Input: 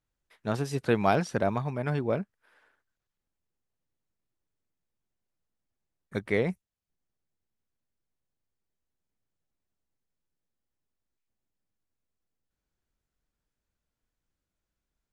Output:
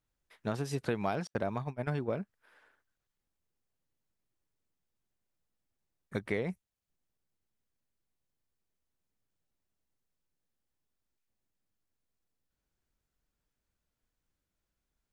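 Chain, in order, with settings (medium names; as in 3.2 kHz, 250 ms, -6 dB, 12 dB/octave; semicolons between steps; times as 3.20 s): 1.27–2.18 s: gate -30 dBFS, range -43 dB; compression 4:1, threshold -30 dBFS, peak gain reduction 10.5 dB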